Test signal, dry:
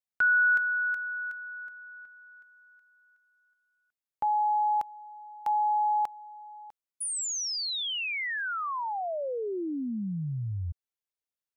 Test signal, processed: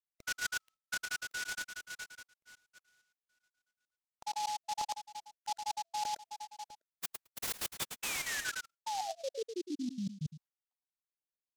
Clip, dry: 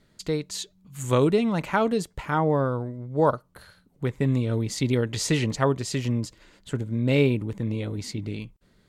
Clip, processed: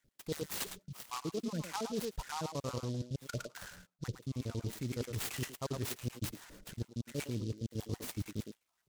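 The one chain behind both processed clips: random holes in the spectrogram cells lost 62%; in parallel at -0.5 dB: peak limiter -21.5 dBFS; on the sum: bass shelf 130 Hz +4 dB; speakerphone echo 110 ms, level -8 dB; gate -54 dBFS, range -11 dB; reverse; compression 10:1, threshold -32 dBFS; reverse; delay time shaken by noise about 4.5 kHz, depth 0.074 ms; trim -2.5 dB

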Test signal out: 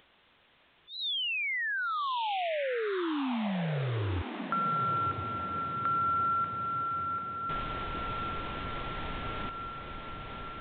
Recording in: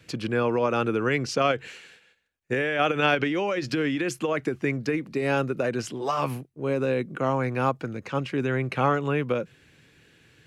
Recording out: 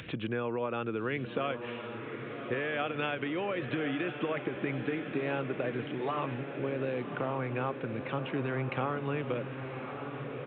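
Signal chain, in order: resampled via 8 kHz; compression 4:1, threshold -28 dBFS; echo that smears into a reverb 1113 ms, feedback 61%, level -8 dB; upward compressor, threshold -33 dBFS; trim -2.5 dB

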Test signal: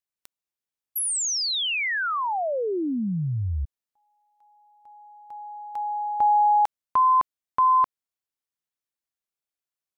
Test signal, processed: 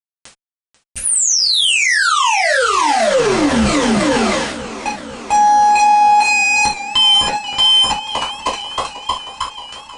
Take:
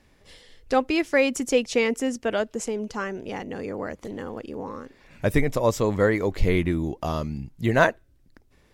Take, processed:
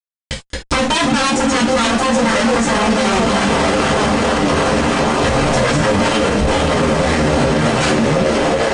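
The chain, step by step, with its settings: bass shelf 450 Hz +9.5 dB; transient shaper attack +7 dB, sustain -2 dB; waveshaping leveller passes 2; reverse; compression 8:1, threshold -15 dBFS; reverse; Chebyshev shaper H 2 -25 dB, 7 -11 dB, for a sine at -3 dBFS; repeats whose band climbs or falls 314 ms, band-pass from 200 Hz, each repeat 0.7 oct, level -3 dB; expander -43 dBFS; fuzz box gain 41 dB, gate -38 dBFS; steep low-pass 9.7 kHz 96 dB/octave; gated-style reverb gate 100 ms falling, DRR -5.5 dB; loudness maximiser +5 dB; modulated delay 489 ms, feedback 71%, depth 89 cents, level -15.5 dB; trim -5.5 dB

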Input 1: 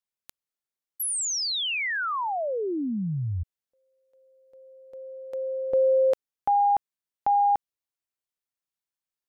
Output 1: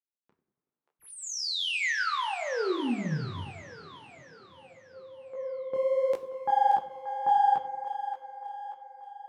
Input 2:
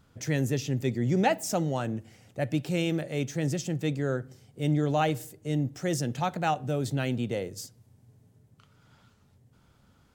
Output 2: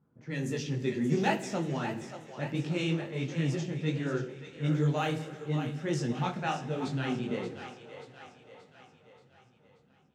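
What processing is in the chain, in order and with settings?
partial rectifier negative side -3 dB; level-controlled noise filter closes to 770 Hz, open at -22 dBFS; high-pass 140 Hz 12 dB/octave; peaking EQ 630 Hz -6.5 dB 0.77 oct; two-band feedback delay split 450 Hz, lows 94 ms, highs 581 ms, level -9.5 dB; two-slope reverb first 0.45 s, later 4.8 s, from -18 dB, DRR 7.5 dB; level rider gain up to 3.5 dB; detune thickener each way 51 cents

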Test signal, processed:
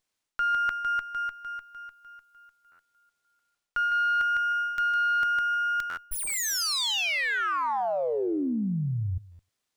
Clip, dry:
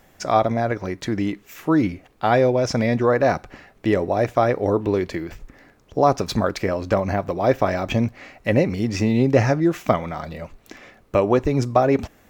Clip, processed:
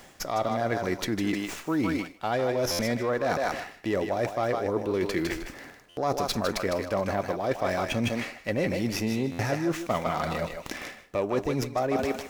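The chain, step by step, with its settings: bass shelf 120 Hz -7 dB; thinning echo 155 ms, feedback 19%, high-pass 460 Hz, level -6.5 dB; in parallel at -3 dB: saturation -11 dBFS; on the sum: treble shelf 4 kHz +9 dB; reverse; compression 6:1, threshold -25 dBFS; reverse; buffer glitch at 2.71/5.89/9.31 s, samples 512, times 6; sliding maximum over 3 samples

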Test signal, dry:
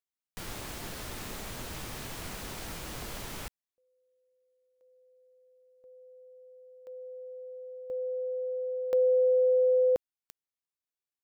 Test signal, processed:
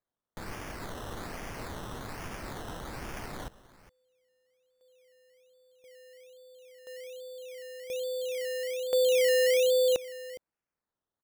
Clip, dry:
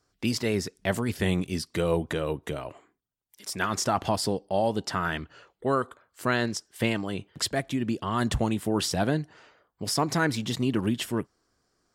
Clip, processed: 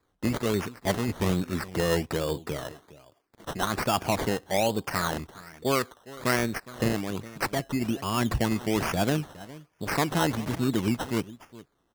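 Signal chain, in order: delay 412 ms -18 dB; decimation with a swept rate 15×, swing 60% 1.2 Hz

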